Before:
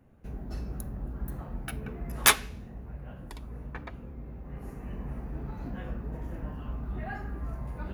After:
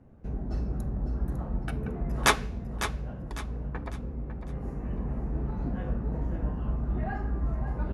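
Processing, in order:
low-pass filter 5,300 Hz 12 dB per octave
parametric band 2,900 Hz −9 dB 2.3 octaves
repeating echo 552 ms, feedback 34%, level −10 dB
level +5.5 dB

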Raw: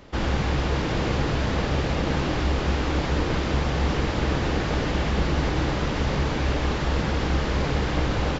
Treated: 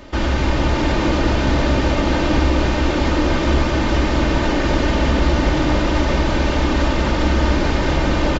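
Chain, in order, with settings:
comb filter 3.3 ms, depth 48%
in parallel at −0.5 dB: brickwall limiter −22.5 dBFS, peak gain reduction 12 dB
on the sum: delay that swaps between a low-pass and a high-pass 273 ms, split 1,100 Hz, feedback 57%, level −2 dB
level +1.5 dB

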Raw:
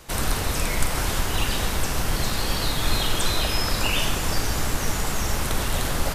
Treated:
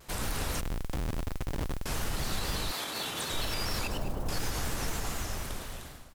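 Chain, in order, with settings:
fade-out on the ending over 1.35 s
0:03.87–0:04.29: Chebyshev low-pass filter 670 Hz, order 2
repeating echo 105 ms, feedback 37%, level −8 dB
brickwall limiter −14.5 dBFS, peak gain reduction 6 dB
0:00.61–0:01.86: comparator with hysteresis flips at −20 dBFS
0:02.71–0:03.32: high-pass filter 430 Hz → 110 Hz 12 dB per octave
noise that follows the level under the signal 23 dB
pitch modulation by a square or saw wave square 4.1 Hz, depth 100 cents
level −7.5 dB

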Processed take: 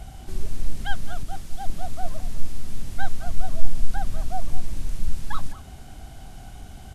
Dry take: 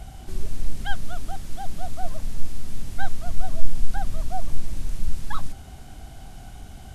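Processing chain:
far-end echo of a speakerphone 210 ms, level −15 dB
0:01.23–0:01.70: multiband upward and downward expander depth 70%

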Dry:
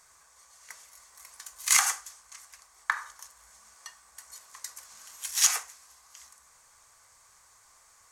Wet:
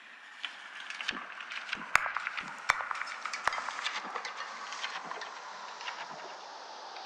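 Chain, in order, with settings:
gliding playback speed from 161% → 69%
Butterworth high-pass 190 Hz 72 dB per octave
treble cut that deepens with the level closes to 340 Hz, closed at −26.5 dBFS
low-pass filter 5,300 Hz 24 dB per octave
in parallel at −9.5 dB: sine wavefolder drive 10 dB, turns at −11 dBFS
on the sum: high-shelf EQ 3,300 Hz −9 dB
rectangular room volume 470 cubic metres, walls furnished, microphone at 0.32 metres
delay with pitch and tempo change per echo 506 ms, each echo −2 semitones, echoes 2
on a send: echo through a band-pass that steps 105 ms, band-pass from 690 Hz, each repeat 0.7 octaves, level −4.5 dB
on the sum: level +7 dB

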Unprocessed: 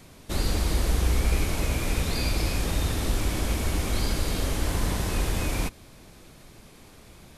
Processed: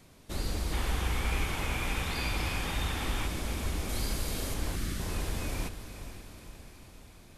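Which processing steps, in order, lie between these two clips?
0:00.73–0:03.27: gain on a spectral selection 720–3,700 Hz +7 dB
0:03.89–0:04.54: high-shelf EQ 6,700 Hz +7.5 dB
0:04.75–0:05.00: time-frequency box erased 400–1,100 Hz
feedback delay with all-pass diffusion 471 ms, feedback 58%, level −11 dB
level −7.5 dB

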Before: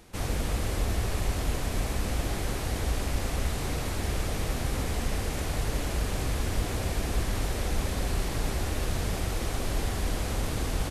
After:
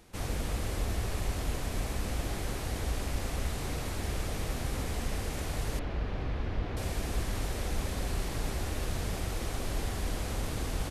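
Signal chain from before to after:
0:05.79–0:06.77: high-frequency loss of the air 280 metres
level −4 dB

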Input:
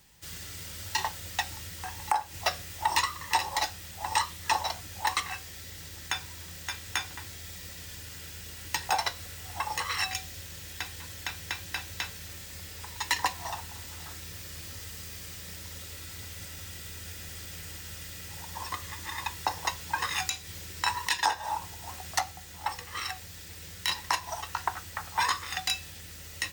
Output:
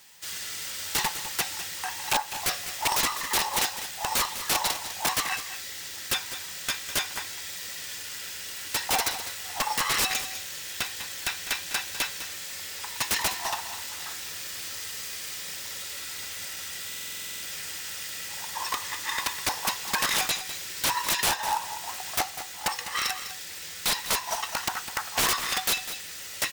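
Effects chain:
high-pass filter 960 Hz 6 dB per octave
wrap-around overflow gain 25.5 dB
on a send: single-tap delay 202 ms −11.5 dB
on the sum: buffer that repeats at 0:16.87, samples 2,048, times 11
highs frequency-modulated by the lows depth 0.42 ms
level +8.5 dB

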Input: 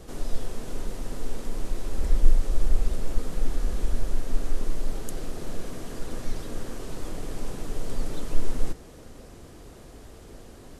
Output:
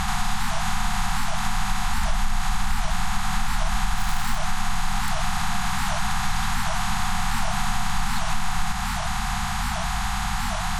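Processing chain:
compressor on every frequency bin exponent 0.4
mid-hump overdrive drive 29 dB, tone 1,500 Hz, clips at −2.5 dBFS
0:03.97–0:04.38: surface crackle 330 per second −18 dBFS
downward compressor, threshold −16 dBFS, peak gain reduction 7 dB
brick-wall band-stop 220–700 Hz
wow of a warped record 78 rpm, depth 250 cents

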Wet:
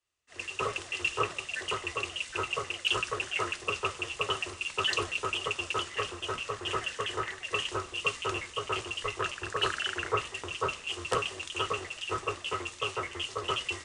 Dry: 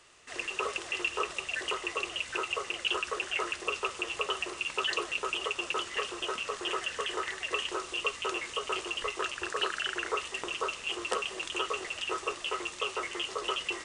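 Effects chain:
sub-octave generator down 2 octaves, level −1 dB
harmonic generator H 5 −30 dB, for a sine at −15.5 dBFS
multiband upward and downward expander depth 100%

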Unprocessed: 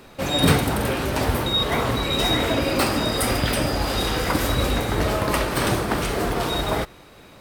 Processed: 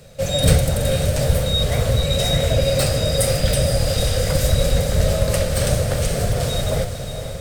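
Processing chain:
sub-octave generator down 1 octave, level +1 dB
drawn EQ curve 150 Hz 0 dB, 340 Hz −18 dB, 540 Hz +5 dB, 940 Hz −17 dB, 1,600 Hz −8 dB, 2,600 Hz −7 dB, 7,800 Hz +4 dB, 12,000 Hz −2 dB
feedback delay with all-pass diffusion 503 ms, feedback 55%, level −8.5 dB
level +3 dB

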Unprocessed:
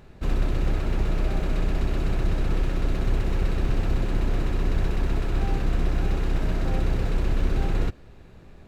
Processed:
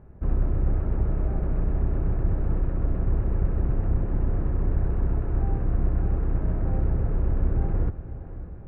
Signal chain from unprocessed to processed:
Bessel low-pass filter 1,100 Hz, order 4
parametric band 73 Hz +6.5 dB 1.9 octaves
feedback delay with all-pass diffusion 556 ms, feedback 60%, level −13.5 dB
level −3 dB

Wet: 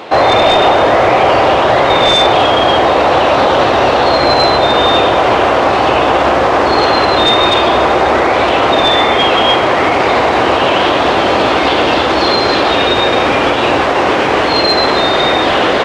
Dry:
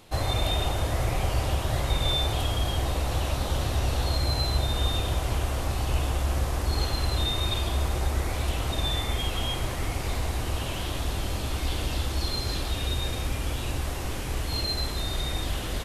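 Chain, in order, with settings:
high-pass filter 440 Hz 12 dB per octave
high-shelf EQ 6,800 Hz −10 dB
wave folding −27 dBFS
head-to-tape spacing loss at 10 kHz 28 dB
boost into a limiter +33 dB
level −1 dB

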